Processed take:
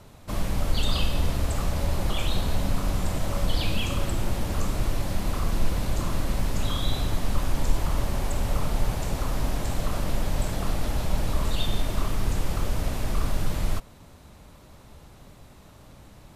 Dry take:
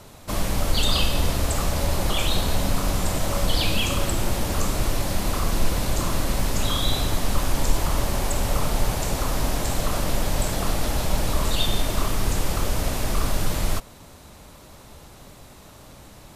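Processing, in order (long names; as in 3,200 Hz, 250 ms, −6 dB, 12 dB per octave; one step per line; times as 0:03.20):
bass and treble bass +4 dB, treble −4 dB
level −5.5 dB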